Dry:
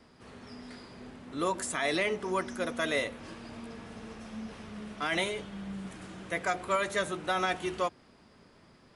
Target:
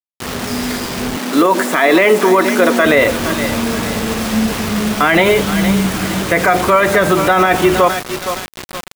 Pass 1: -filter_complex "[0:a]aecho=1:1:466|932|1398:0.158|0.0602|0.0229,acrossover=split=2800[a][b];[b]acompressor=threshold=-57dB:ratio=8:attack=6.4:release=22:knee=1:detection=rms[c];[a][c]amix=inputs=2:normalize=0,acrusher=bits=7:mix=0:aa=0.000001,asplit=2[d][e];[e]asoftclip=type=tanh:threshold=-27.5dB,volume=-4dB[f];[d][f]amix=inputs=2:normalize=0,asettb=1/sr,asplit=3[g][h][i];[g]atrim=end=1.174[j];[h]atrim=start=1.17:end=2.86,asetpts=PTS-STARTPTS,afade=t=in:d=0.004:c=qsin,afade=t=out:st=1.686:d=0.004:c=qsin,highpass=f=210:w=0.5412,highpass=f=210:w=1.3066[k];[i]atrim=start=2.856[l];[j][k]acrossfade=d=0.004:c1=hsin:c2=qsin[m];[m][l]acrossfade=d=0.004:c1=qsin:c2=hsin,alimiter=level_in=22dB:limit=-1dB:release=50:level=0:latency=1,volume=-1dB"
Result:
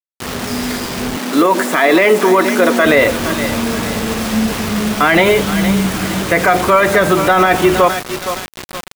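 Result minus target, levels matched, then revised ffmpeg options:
soft clip: distortion +15 dB
-filter_complex "[0:a]aecho=1:1:466|932|1398:0.158|0.0602|0.0229,acrossover=split=2800[a][b];[b]acompressor=threshold=-57dB:ratio=8:attack=6.4:release=22:knee=1:detection=rms[c];[a][c]amix=inputs=2:normalize=0,acrusher=bits=7:mix=0:aa=0.000001,asplit=2[d][e];[e]asoftclip=type=tanh:threshold=-16.5dB,volume=-4dB[f];[d][f]amix=inputs=2:normalize=0,asettb=1/sr,asplit=3[g][h][i];[g]atrim=end=1.174[j];[h]atrim=start=1.17:end=2.86,asetpts=PTS-STARTPTS,afade=t=in:d=0.004:c=qsin,afade=t=out:st=1.686:d=0.004:c=qsin,highpass=f=210:w=0.5412,highpass=f=210:w=1.3066[k];[i]atrim=start=2.856[l];[j][k]acrossfade=d=0.004:c1=hsin:c2=qsin[m];[m][l]acrossfade=d=0.004:c1=qsin:c2=hsin,alimiter=level_in=22dB:limit=-1dB:release=50:level=0:latency=1,volume=-1dB"

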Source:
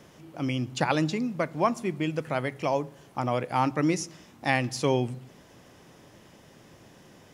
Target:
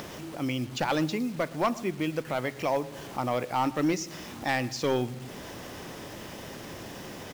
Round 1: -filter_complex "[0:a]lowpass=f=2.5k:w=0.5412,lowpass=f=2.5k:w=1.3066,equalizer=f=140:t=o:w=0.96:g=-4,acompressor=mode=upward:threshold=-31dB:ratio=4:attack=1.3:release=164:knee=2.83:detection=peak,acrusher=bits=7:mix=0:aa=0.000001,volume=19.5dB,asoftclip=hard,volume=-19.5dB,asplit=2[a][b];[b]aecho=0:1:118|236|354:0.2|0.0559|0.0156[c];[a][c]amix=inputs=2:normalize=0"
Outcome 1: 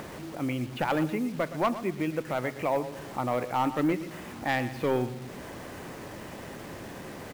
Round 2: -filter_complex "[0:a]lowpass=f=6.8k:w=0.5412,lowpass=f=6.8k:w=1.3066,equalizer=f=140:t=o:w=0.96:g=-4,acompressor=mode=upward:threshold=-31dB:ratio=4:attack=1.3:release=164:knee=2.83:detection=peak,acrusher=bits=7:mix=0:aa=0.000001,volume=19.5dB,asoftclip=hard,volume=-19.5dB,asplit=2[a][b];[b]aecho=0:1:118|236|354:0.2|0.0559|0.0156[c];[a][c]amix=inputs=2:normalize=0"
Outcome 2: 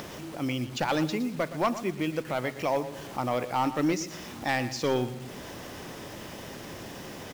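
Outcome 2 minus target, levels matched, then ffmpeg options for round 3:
echo-to-direct +8 dB
-filter_complex "[0:a]lowpass=f=6.8k:w=0.5412,lowpass=f=6.8k:w=1.3066,equalizer=f=140:t=o:w=0.96:g=-4,acompressor=mode=upward:threshold=-31dB:ratio=4:attack=1.3:release=164:knee=2.83:detection=peak,acrusher=bits=7:mix=0:aa=0.000001,volume=19.5dB,asoftclip=hard,volume=-19.5dB,asplit=2[a][b];[b]aecho=0:1:118|236:0.0794|0.0222[c];[a][c]amix=inputs=2:normalize=0"

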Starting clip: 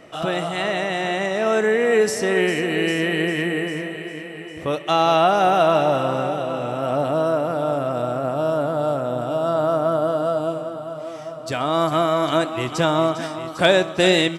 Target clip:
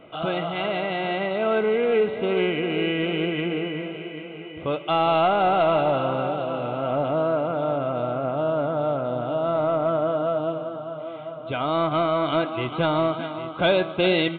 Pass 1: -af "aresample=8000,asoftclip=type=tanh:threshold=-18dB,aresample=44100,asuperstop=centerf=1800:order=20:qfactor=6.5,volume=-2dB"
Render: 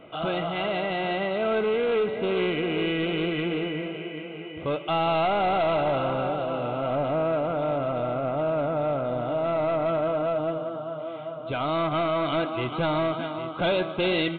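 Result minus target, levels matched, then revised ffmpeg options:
soft clip: distortion +10 dB
-af "aresample=8000,asoftclip=type=tanh:threshold=-9.5dB,aresample=44100,asuperstop=centerf=1800:order=20:qfactor=6.5,volume=-2dB"

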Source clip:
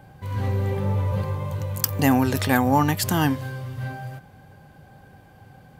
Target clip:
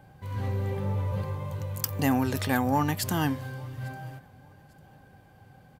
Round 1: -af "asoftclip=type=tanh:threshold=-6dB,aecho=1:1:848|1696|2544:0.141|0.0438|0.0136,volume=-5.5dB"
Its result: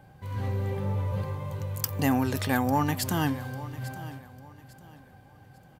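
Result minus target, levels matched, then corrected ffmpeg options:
echo-to-direct +10.5 dB
-af "asoftclip=type=tanh:threshold=-6dB,aecho=1:1:848|1696:0.0422|0.0131,volume=-5.5dB"

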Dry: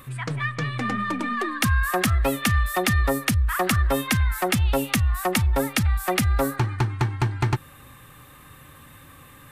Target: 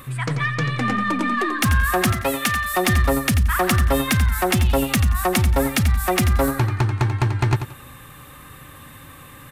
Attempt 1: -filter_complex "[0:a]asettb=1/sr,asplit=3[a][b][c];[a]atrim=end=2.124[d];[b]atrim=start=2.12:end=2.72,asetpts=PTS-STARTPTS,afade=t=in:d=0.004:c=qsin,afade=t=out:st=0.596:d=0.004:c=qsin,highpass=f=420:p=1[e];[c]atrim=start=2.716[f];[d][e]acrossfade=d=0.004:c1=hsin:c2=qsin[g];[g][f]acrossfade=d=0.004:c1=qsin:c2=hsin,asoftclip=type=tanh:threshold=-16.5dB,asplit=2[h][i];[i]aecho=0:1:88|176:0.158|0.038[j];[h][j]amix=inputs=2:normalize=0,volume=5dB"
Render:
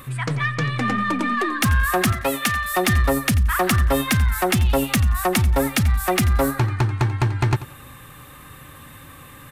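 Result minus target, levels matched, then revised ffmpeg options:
echo-to-direct -6.5 dB
-filter_complex "[0:a]asettb=1/sr,asplit=3[a][b][c];[a]atrim=end=2.124[d];[b]atrim=start=2.12:end=2.72,asetpts=PTS-STARTPTS,afade=t=in:d=0.004:c=qsin,afade=t=out:st=0.596:d=0.004:c=qsin,highpass=f=420:p=1[e];[c]atrim=start=2.716[f];[d][e]acrossfade=d=0.004:c1=hsin:c2=qsin[g];[g][f]acrossfade=d=0.004:c1=qsin:c2=hsin,asoftclip=type=tanh:threshold=-16.5dB,asplit=2[h][i];[i]aecho=0:1:88|176|264:0.335|0.0804|0.0193[j];[h][j]amix=inputs=2:normalize=0,volume=5dB"

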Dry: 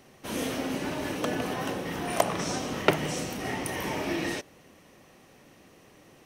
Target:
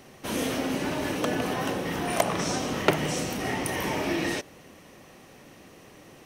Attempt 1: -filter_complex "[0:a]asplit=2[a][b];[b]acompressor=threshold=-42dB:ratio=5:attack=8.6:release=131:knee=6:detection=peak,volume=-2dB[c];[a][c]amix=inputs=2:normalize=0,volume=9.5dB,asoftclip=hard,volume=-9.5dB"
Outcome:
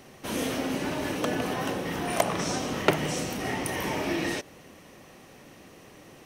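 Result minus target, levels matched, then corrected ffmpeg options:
compressor: peak gain reduction +5 dB
-filter_complex "[0:a]asplit=2[a][b];[b]acompressor=threshold=-35.5dB:ratio=5:attack=8.6:release=131:knee=6:detection=peak,volume=-2dB[c];[a][c]amix=inputs=2:normalize=0,volume=9.5dB,asoftclip=hard,volume=-9.5dB"

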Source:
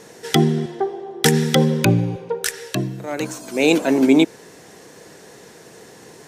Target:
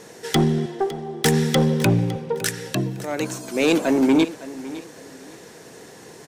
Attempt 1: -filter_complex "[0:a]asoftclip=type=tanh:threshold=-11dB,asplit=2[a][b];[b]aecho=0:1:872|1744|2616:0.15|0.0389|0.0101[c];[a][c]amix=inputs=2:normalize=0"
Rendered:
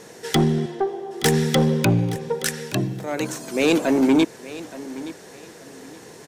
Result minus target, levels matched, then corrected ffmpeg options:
echo 0.314 s late
-filter_complex "[0:a]asoftclip=type=tanh:threshold=-11dB,asplit=2[a][b];[b]aecho=0:1:558|1116|1674:0.15|0.0389|0.0101[c];[a][c]amix=inputs=2:normalize=0"

